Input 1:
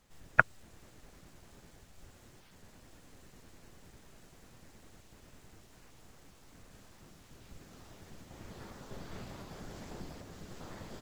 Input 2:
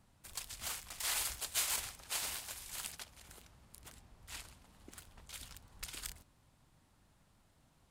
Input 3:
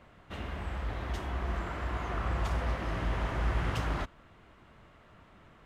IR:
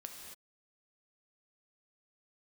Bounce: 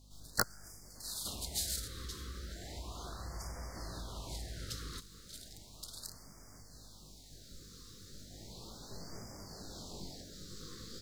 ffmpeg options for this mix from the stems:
-filter_complex "[0:a]flanger=delay=17.5:depth=4.5:speed=0.45,aeval=exprs='val(0)+0.00112*(sin(2*PI*50*n/s)+sin(2*PI*2*50*n/s)/2+sin(2*PI*3*50*n/s)/3+sin(2*PI*4*50*n/s)/4+sin(2*PI*5*50*n/s)/5)':channel_layout=same,volume=-0.5dB,asplit=3[link_01][link_02][link_03];[link_02]volume=-22dB[link_04];[1:a]volume=-11dB,asplit=3[link_05][link_06][link_07];[link_05]atrim=end=1.88,asetpts=PTS-STARTPTS,afade=type=out:start_time=1.876:duration=0.004:curve=hsin[link_08];[link_06]atrim=start=1.88:end=4.04,asetpts=PTS-STARTPTS,volume=0[link_09];[link_07]atrim=start=4.04,asetpts=PTS-STARTPTS,afade=type=in:duration=0.004:curve=hsin[link_10];[link_08][link_09][link_10]concat=n=3:v=0:a=1,asplit=2[link_11][link_12];[link_12]volume=-10dB[link_13];[2:a]crystalizer=i=2:c=0,acompressor=threshold=-38dB:ratio=4,adelay=950,volume=-4.5dB[link_14];[link_03]apad=whole_len=348622[link_15];[link_11][link_15]sidechaincompress=threshold=-53dB:ratio=4:attack=32:release=477[link_16];[3:a]atrim=start_sample=2205[link_17];[link_04][link_13]amix=inputs=2:normalize=0[link_18];[link_18][link_17]afir=irnorm=-1:irlink=0[link_19];[link_01][link_16][link_14][link_19]amix=inputs=4:normalize=0,highshelf=frequency=3300:width_type=q:width=3:gain=7.5,aeval=exprs='(mod(5.96*val(0)+1,2)-1)/5.96':channel_layout=same,afftfilt=real='re*(1-between(b*sr/1024,730*pow(3400/730,0.5+0.5*sin(2*PI*0.35*pts/sr))/1.41,730*pow(3400/730,0.5+0.5*sin(2*PI*0.35*pts/sr))*1.41))':imag='im*(1-between(b*sr/1024,730*pow(3400/730,0.5+0.5*sin(2*PI*0.35*pts/sr))/1.41,730*pow(3400/730,0.5+0.5*sin(2*PI*0.35*pts/sr))*1.41))':win_size=1024:overlap=0.75"

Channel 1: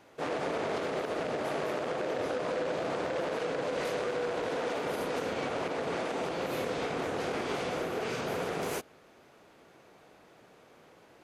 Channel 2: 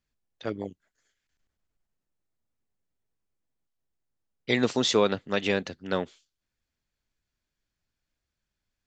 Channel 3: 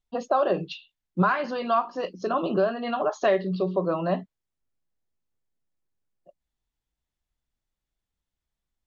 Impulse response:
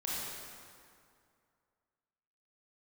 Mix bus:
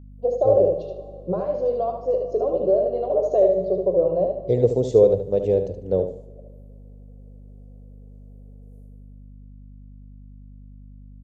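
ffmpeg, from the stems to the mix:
-filter_complex "[0:a]acompressor=threshold=-35dB:ratio=6,volume=-20dB,asplit=3[link_01][link_02][link_03];[link_02]volume=-14.5dB[link_04];[link_03]volume=-16dB[link_05];[1:a]bass=frequency=250:gain=11,treble=frequency=4000:gain=-6,volume=1dB,asplit=4[link_06][link_07][link_08][link_09];[link_07]volume=-23.5dB[link_10];[link_08]volume=-8dB[link_11];[2:a]adelay=100,volume=-1dB,asplit=3[link_12][link_13][link_14];[link_13]volume=-11.5dB[link_15];[link_14]volume=-3dB[link_16];[link_09]apad=whole_len=495540[link_17];[link_01][link_17]sidechaingate=range=-19dB:threshold=-51dB:ratio=16:detection=peak[link_18];[3:a]atrim=start_sample=2205[link_19];[link_04][link_10][link_15]amix=inputs=3:normalize=0[link_20];[link_20][link_19]afir=irnorm=-1:irlink=0[link_21];[link_05][link_11][link_16]amix=inputs=3:normalize=0,aecho=0:1:74|148|222|296:1|0.25|0.0625|0.0156[link_22];[link_18][link_06][link_12][link_21][link_22]amix=inputs=5:normalize=0,firequalizer=gain_entry='entry(110,0);entry(220,-12);entry(480,10);entry(930,-14);entry(1400,-29);entry(9300,1)':delay=0.05:min_phase=1,aeval=exprs='val(0)+0.00794*(sin(2*PI*50*n/s)+sin(2*PI*2*50*n/s)/2+sin(2*PI*3*50*n/s)/3+sin(2*PI*4*50*n/s)/4+sin(2*PI*5*50*n/s)/5)':channel_layout=same"

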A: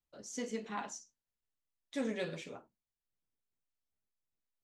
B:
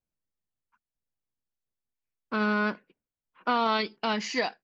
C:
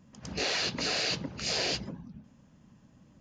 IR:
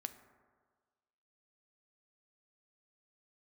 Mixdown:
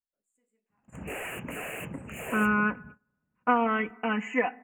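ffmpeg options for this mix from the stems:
-filter_complex "[0:a]bass=frequency=250:gain=-2,treble=frequency=4000:gain=13,volume=-17.5dB,asplit=2[link_01][link_02];[link_02]volume=-21.5dB[link_03];[1:a]aecho=1:1:4:0.69,volume=-3.5dB,asplit=2[link_04][link_05];[link_05]volume=-6.5dB[link_06];[2:a]asoftclip=type=hard:threshold=-30dB,adelay=700,volume=-0.5dB[link_07];[3:a]atrim=start_sample=2205[link_08];[link_03][link_06]amix=inputs=2:normalize=0[link_09];[link_09][link_08]afir=irnorm=-1:irlink=0[link_10];[link_01][link_04][link_07][link_10]amix=inputs=4:normalize=0,agate=range=-21dB:threshold=-48dB:ratio=16:detection=peak,asuperstop=centerf=4600:order=12:qfactor=1"

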